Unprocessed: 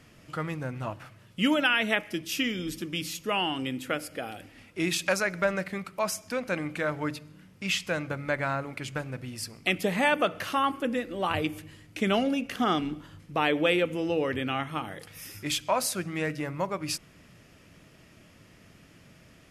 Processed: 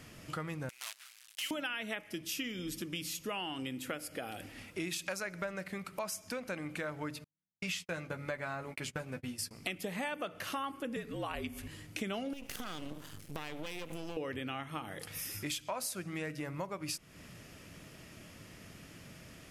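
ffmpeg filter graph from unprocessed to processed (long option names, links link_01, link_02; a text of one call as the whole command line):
ffmpeg -i in.wav -filter_complex "[0:a]asettb=1/sr,asplit=3[link_01][link_02][link_03];[link_01]atrim=end=0.694[link_04];[link_02]atrim=start=0.69:end=1.51,asetpts=PTS-STARTPTS,afade=type=in:duration=0.004:curve=qsin,afade=type=out:start_time=0.816:duration=0.004:curve=qsin,acrusher=bits=6:dc=4:mix=0:aa=0.000001,asuperpass=centerf=5800:order=4:qfactor=0.54[link_05];[link_03]atrim=start=1.506[link_06];[link_04][link_05]acrossfade=duration=0.004:curve1=hsin:curve2=qsin[link_07];[link_07][link_06]acrossfade=duration=0.004:curve1=qsin:curve2=hsin,asettb=1/sr,asplit=3[link_08][link_09][link_10];[link_08]atrim=end=7.244[link_11];[link_09]atrim=start=7.24:end=9.51,asetpts=PTS-STARTPTS,afade=type=in:duration=0.004:curve=qsin,afade=type=out:start_time=2.266:duration=0.004:curve=qsin,agate=range=-49dB:threshold=-40dB:ratio=16:release=100:detection=peak,asplit=2[link_12][link_13];[link_13]adelay=12,volume=-6dB[link_14];[link_12][link_14]amix=inputs=2:normalize=0,atrim=end_sample=100107[link_15];[link_10]atrim=start=9.506[link_16];[link_11][link_15]acrossfade=duration=0.004:curve1=hsin:curve2=qsin[link_17];[link_17][link_16]acrossfade=duration=0.004:curve1=qsin:curve2=hsin,asettb=1/sr,asplit=3[link_18][link_19][link_20];[link_18]atrim=end=10.964[link_21];[link_19]atrim=start=10.96:end=11.68,asetpts=PTS-STARTPTS,afade=type=in:duration=0.004:curve=qsin,afade=type=out:start_time=0.716:duration=0.004:curve=qsin,afreqshift=-58,acompressor=mode=upward:threshold=-33dB:ratio=2.5:attack=3.2:release=140:knee=2.83:detection=peak[link_22];[link_20]atrim=start=11.676[link_23];[link_21][link_22]acrossfade=duration=0.004:curve1=hsin:curve2=qsin[link_24];[link_24][link_23]acrossfade=duration=0.004:curve1=qsin:curve2=hsin,asettb=1/sr,asplit=3[link_25][link_26][link_27];[link_25]atrim=end=12.334[link_28];[link_26]atrim=start=12.33:end=14.17,asetpts=PTS-STARTPTS,afade=type=in:duration=0.004:curve=qsin,afade=type=out:start_time=1.836:duration=0.004:curve=qsin,highshelf=frequency=4700:gain=10.5,acompressor=threshold=-31dB:ratio=4:attack=3.2:release=140:knee=1:detection=peak,aeval=exprs='max(val(0),0)':channel_layout=same[link_29];[link_27]atrim=start=14.166[link_30];[link_28][link_29]acrossfade=duration=0.004:curve1=hsin:curve2=qsin[link_31];[link_31][link_30]acrossfade=duration=0.004:curve1=qsin:curve2=hsin,highshelf=frequency=6200:gain=6,acompressor=threshold=-40dB:ratio=4,volume=2dB" out.wav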